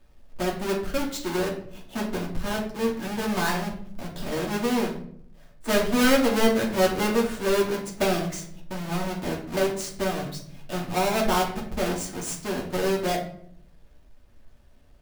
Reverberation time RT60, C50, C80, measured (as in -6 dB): 0.60 s, 7.0 dB, 11.5 dB